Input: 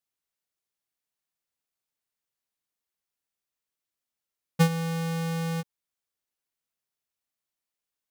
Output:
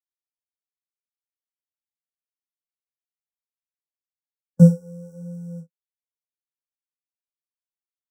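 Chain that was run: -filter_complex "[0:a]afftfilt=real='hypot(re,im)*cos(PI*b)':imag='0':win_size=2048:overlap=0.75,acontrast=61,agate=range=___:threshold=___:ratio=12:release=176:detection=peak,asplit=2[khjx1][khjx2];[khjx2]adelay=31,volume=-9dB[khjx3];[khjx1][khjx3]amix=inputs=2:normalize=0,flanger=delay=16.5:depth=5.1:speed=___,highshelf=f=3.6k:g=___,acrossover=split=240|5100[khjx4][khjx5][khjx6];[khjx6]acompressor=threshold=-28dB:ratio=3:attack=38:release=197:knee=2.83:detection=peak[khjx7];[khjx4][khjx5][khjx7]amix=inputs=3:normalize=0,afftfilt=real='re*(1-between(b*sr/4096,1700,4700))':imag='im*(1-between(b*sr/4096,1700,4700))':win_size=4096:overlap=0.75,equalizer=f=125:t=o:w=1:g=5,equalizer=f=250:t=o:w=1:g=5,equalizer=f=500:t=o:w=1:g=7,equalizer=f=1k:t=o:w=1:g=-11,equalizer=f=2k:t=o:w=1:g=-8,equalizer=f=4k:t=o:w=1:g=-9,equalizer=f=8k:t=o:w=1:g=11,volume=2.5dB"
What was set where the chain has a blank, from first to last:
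-34dB, -21dB, 1.1, -11.5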